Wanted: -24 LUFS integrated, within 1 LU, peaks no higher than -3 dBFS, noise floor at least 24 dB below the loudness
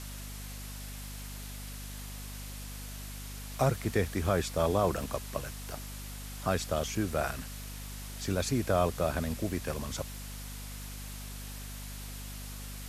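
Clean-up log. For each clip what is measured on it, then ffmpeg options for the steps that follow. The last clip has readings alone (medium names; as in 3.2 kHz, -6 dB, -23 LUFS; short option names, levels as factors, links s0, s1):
hum 50 Hz; highest harmonic 250 Hz; hum level -40 dBFS; noise floor -42 dBFS; noise floor target -59 dBFS; loudness -35.0 LUFS; peak level -15.5 dBFS; loudness target -24.0 LUFS
-> -af "bandreject=f=50:t=h:w=4,bandreject=f=100:t=h:w=4,bandreject=f=150:t=h:w=4,bandreject=f=200:t=h:w=4,bandreject=f=250:t=h:w=4"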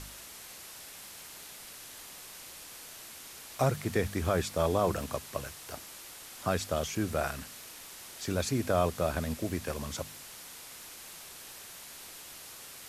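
hum not found; noise floor -48 dBFS; noise floor target -60 dBFS
-> -af "afftdn=nr=12:nf=-48"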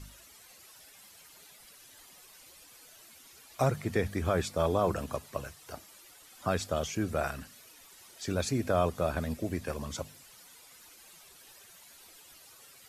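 noise floor -56 dBFS; noise floor target -57 dBFS
-> -af "afftdn=nr=6:nf=-56"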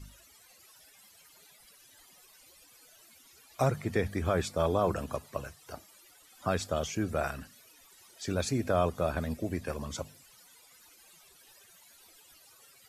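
noise floor -59 dBFS; loudness -32.5 LUFS; peak level -16.0 dBFS; loudness target -24.0 LUFS
-> -af "volume=2.66"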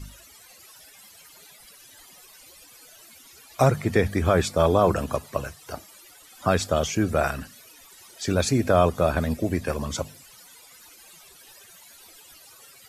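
loudness -24.0 LUFS; peak level -7.5 dBFS; noise floor -51 dBFS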